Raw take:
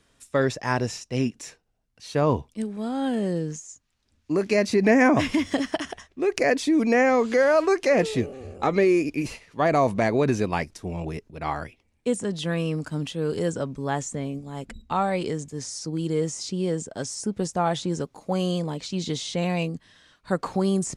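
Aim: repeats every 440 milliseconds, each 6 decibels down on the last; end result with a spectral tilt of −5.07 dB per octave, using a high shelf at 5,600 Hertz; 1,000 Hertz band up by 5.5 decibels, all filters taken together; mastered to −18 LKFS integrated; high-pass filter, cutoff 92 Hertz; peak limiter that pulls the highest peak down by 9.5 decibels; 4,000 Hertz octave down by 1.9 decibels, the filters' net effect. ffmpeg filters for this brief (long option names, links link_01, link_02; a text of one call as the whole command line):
ffmpeg -i in.wav -af "highpass=92,equalizer=frequency=1000:width_type=o:gain=7.5,equalizer=frequency=4000:width_type=o:gain=-6.5,highshelf=frequency=5600:gain=8,alimiter=limit=-14dB:level=0:latency=1,aecho=1:1:440|880|1320|1760|2200|2640:0.501|0.251|0.125|0.0626|0.0313|0.0157,volume=7.5dB" out.wav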